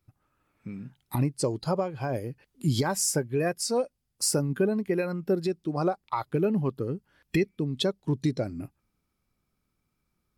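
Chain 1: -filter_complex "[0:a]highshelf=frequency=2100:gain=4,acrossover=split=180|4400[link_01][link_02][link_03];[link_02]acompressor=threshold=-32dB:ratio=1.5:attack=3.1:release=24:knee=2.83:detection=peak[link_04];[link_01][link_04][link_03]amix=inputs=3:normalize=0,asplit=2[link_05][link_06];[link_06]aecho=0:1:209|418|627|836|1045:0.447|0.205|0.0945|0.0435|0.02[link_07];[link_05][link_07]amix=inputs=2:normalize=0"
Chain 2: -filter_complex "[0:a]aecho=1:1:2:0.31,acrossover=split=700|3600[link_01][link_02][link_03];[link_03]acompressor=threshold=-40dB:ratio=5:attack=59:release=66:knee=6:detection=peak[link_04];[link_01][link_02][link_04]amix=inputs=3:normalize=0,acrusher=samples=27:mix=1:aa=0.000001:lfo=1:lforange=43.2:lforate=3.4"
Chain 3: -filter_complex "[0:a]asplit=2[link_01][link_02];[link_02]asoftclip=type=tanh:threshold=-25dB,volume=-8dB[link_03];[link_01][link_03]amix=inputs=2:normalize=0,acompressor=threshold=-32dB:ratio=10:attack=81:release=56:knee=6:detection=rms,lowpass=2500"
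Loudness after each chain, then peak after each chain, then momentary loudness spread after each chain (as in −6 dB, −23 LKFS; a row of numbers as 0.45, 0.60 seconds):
−28.0, −29.0, −34.0 LKFS; −10.0, −14.0, −17.0 dBFS; 14, 13, 7 LU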